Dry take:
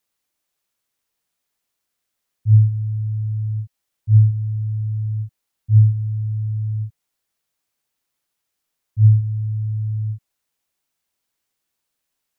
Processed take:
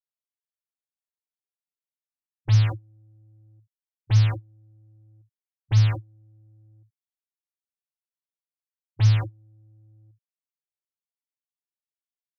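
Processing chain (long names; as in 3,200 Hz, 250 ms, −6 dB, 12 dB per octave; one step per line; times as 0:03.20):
noise gate −18 dBFS, range −42 dB
high-pass filter 140 Hz 12 dB per octave
in parallel at −5 dB: sine wavefolder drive 14 dB, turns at −28 dBFS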